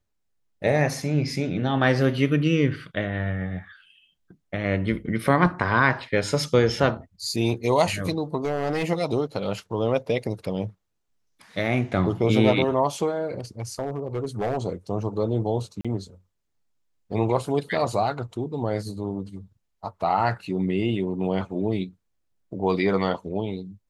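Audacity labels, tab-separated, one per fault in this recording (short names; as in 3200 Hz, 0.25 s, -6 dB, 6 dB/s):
8.440000	8.850000	clipped -20.5 dBFS
13.600000	14.570000	clipped -21.5 dBFS
15.810000	15.850000	gap 36 ms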